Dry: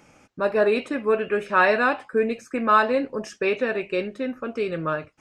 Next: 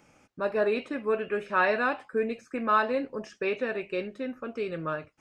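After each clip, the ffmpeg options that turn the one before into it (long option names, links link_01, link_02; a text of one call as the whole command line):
ffmpeg -i in.wav -filter_complex "[0:a]acrossover=split=5700[link_01][link_02];[link_02]acompressor=threshold=-58dB:ratio=4:attack=1:release=60[link_03];[link_01][link_03]amix=inputs=2:normalize=0,volume=-6dB" out.wav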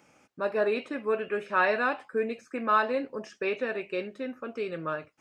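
ffmpeg -i in.wav -af "highpass=frequency=180:poles=1" out.wav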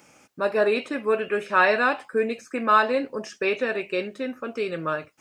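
ffmpeg -i in.wav -af "highshelf=frequency=4600:gain=8.5,volume=5dB" out.wav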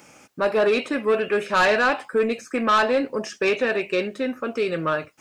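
ffmpeg -i in.wav -af "asoftclip=type=tanh:threshold=-18.5dB,volume=5dB" out.wav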